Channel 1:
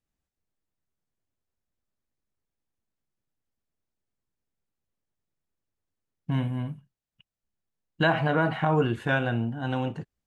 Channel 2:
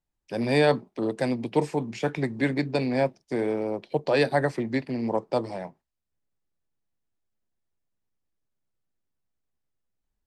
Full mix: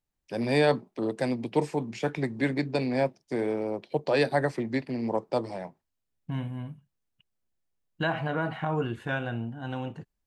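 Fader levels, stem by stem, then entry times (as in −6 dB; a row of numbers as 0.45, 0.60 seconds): −5.5, −2.0 decibels; 0.00, 0.00 seconds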